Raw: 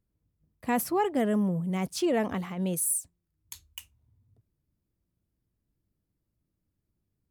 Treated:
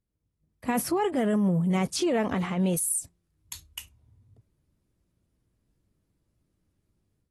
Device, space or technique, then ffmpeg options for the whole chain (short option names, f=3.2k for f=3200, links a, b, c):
low-bitrate web radio: -filter_complex "[0:a]asettb=1/sr,asplit=3[a][b][c];[a]atrim=end=1.784[d];[b]atrim=start=1.78:end=2.67,asetpts=PTS-STARTPTS,afade=t=in:d=0.004:c=qsin,afade=t=out:st=0.886:d=0.004:c=qsin,lowpass=11k[e];[c]atrim=start=2.666[f];[d][e]acrossfade=d=0.004:c1=hsin:c2=qsin[g];[g][f]acrossfade=d=0.004:c1=qsin:c2=hsin,dynaudnorm=f=450:g=3:m=11dB,alimiter=limit=-14.5dB:level=0:latency=1:release=78,volume=-4.5dB" -ar 32000 -c:a aac -b:a 32k